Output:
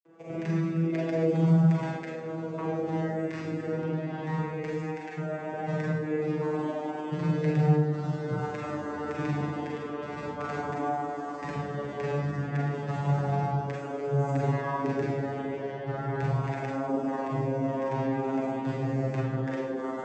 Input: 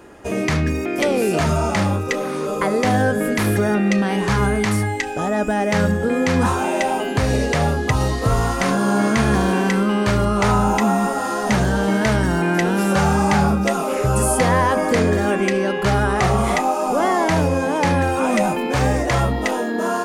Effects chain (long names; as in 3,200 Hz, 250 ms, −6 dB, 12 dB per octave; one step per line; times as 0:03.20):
vocoder with a gliding carrier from E3, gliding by −4 semitones
granular cloud, pitch spread up and down by 0 semitones
four-comb reverb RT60 0.7 s, combs from 33 ms, DRR −2.5 dB
flanger 0.16 Hz, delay 4 ms, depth 5.5 ms, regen +76%
level −8 dB